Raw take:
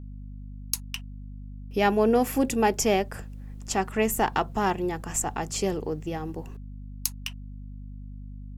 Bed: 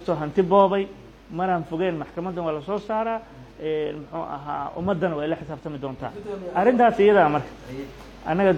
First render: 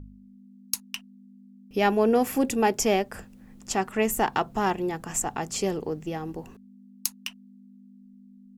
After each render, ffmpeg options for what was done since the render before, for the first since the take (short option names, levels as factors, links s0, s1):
-af "bandreject=f=50:t=h:w=4,bandreject=f=100:t=h:w=4,bandreject=f=150:t=h:w=4"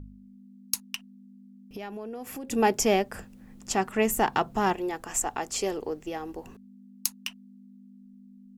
-filter_complex "[0:a]asplit=3[s0][s1][s2];[s0]afade=t=out:st=0.95:d=0.02[s3];[s1]acompressor=threshold=0.0158:ratio=6:attack=3.2:release=140:knee=1:detection=peak,afade=t=in:st=0.95:d=0.02,afade=t=out:st=2.5:d=0.02[s4];[s2]afade=t=in:st=2.5:d=0.02[s5];[s3][s4][s5]amix=inputs=3:normalize=0,asettb=1/sr,asplit=3[s6][s7][s8];[s6]atrim=end=4.734[s9];[s7]atrim=start=4.73:end=6.45,asetpts=PTS-STARTPTS,afade=t=in:d=0.004:c=qsin,afade=t=out:st=1.716:d=0.004:c=qsin,equalizer=f=160:w=1.5:g=-13.5[s10];[s8]atrim=start=6.446[s11];[s9][s10]acrossfade=d=0.004:c1=hsin:c2=qsin[s12];[s12][s11]acrossfade=d=0.004:c1=qsin:c2=hsin"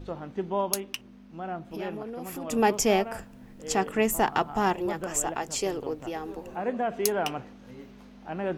-filter_complex "[1:a]volume=0.251[s0];[0:a][s0]amix=inputs=2:normalize=0"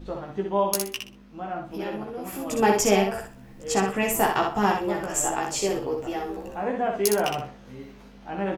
-filter_complex "[0:a]asplit=2[s0][s1];[s1]adelay=15,volume=0.75[s2];[s0][s2]amix=inputs=2:normalize=0,asplit=2[s3][s4];[s4]aecho=0:1:62|124|186:0.596|0.137|0.0315[s5];[s3][s5]amix=inputs=2:normalize=0"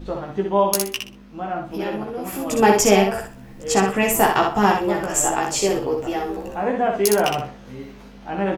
-af "volume=1.88,alimiter=limit=0.794:level=0:latency=1"